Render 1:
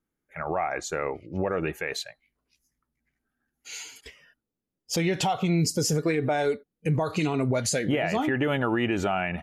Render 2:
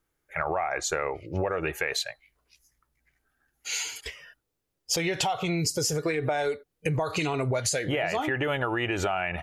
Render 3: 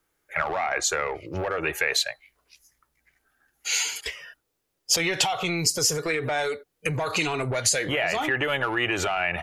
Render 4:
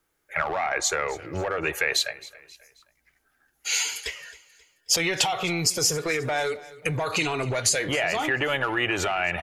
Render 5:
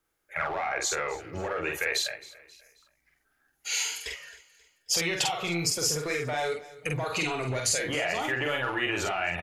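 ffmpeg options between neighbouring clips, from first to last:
ffmpeg -i in.wav -af "equalizer=frequency=220:width=1.5:gain=-14,acompressor=threshold=-33dB:ratio=6,volume=8.5dB" out.wav
ffmpeg -i in.wav -filter_complex "[0:a]lowshelf=frequency=230:gain=-8.5,acrossover=split=120|1300[link_01][link_02][link_03];[link_02]asoftclip=type=tanh:threshold=-31dB[link_04];[link_01][link_04][link_03]amix=inputs=3:normalize=0,volume=6dB" out.wav
ffmpeg -i in.wav -af "aecho=1:1:267|534|801:0.106|0.0445|0.0187" out.wav
ffmpeg -i in.wav -filter_complex "[0:a]asplit=2[link_01][link_02];[link_02]adelay=47,volume=-3dB[link_03];[link_01][link_03]amix=inputs=2:normalize=0,volume=-5.5dB" out.wav

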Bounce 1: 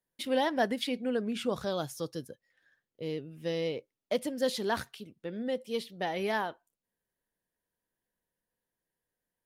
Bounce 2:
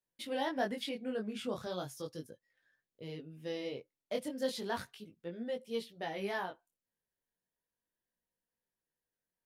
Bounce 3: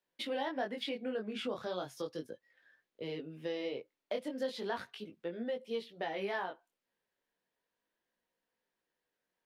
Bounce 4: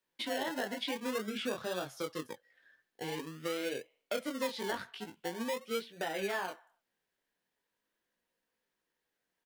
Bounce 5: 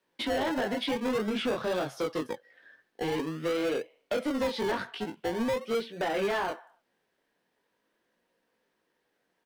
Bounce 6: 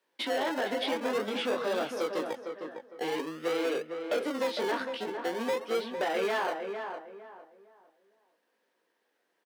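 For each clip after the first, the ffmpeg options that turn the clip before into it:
ffmpeg -i in.wav -af "flanger=delay=17:depth=6.4:speed=0.36,volume=-3dB" out.wav
ffmpeg -i in.wav -filter_complex "[0:a]acrossover=split=230 4500:gain=0.251 1 0.224[link_01][link_02][link_03];[link_01][link_02][link_03]amix=inputs=3:normalize=0,acompressor=threshold=-46dB:ratio=2.5,volume=8.5dB" out.wav
ffmpeg -i in.wav -filter_complex "[0:a]acrossover=split=720|3500[link_01][link_02][link_03];[link_01]acrusher=samples=29:mix=1:aa=0.000001:lfo=1:lforange=17.4:lforate=0.45[link_04];[link_02]aecho=1:1:73|146|219|292:0.119|0.057|0.0274|0.0131[link_05];[link_04][link_05][link_03]amix=inputs=3:normalize=0,volume=2dB" out.wav
ffmpeg -i in.wav -filter_complex "[0:a]tiltshelf=frequency=640:gain=8,bandreject=frequency=7000:width=16,asplit=2[link_01][link_02];[link_02]highpass=frequency=720:poles=1,volume=21dB,asoftclip=type=tanh:threshold=-21dB[link_03];[link_01][link_03]amix=inputs=2:normalize=0,lowpass=frequency=5100:poles=1,volume=-6dB" out.wav
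ffmpeg -i in.wav -filter_complex "[0:a]highpass=330,asplit=2[link_01][link_02];[link_02]adelay=456,lowpass=frequency=1700:poles=1,volume=-6dB,asplit=2[link_03][link_04];[link_04]adelay=456,lowpass=frequency=1700:poles=1,volume=0.3,asplit=2[link_05][link_06];[link_06]adelay=456,lowpass=frequency=1700:poles=1,volume=0.3,asplit=2[link_07][link_08];[link_08]adelay=456,lowpass=frequency=1700:poles=1,volume=0.3[link_09];[link_01][link_03][link_05][link_07][link_09]amix=inputs=5:normalize=0" out.wav

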